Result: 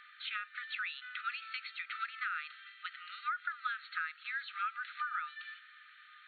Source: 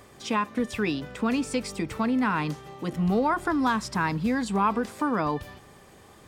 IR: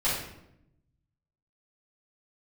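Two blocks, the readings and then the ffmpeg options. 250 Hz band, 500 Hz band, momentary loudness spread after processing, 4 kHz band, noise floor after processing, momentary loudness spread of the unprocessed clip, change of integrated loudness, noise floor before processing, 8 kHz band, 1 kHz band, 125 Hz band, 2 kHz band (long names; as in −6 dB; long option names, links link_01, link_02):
below −40 dB, below −40 dB, 10 LU, −5.5 dB, −58 dBFS, 7 LU, −12.5 dB, −52 dBFS, below −40 dB, −12.5 dB, below −40 dB, −4.5 dB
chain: -af "afftfilt=real='re*between(b*sr/4096,1200,4400)':imag='im*between(b*sr/4096,1200,4400)':win_size=4096:overlap=0.75,acompressor=threshold=-38dB:ratio=6,highshelf=frequency=2300:gain=-10,volume=6.5dB"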